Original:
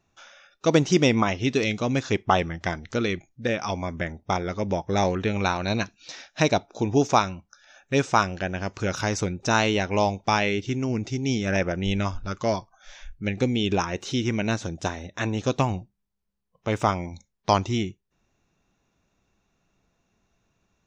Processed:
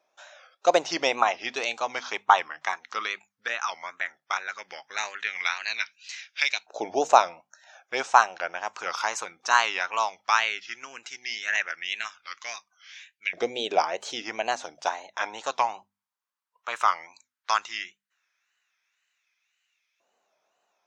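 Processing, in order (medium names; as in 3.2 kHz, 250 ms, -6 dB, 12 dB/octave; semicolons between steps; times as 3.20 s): wow and flutter 150 cents; LFO high-pass saw up 0.15 Hz 580–2400 Hz; hum notches 50/100/150/200/250 Hz; trim -1.5 dB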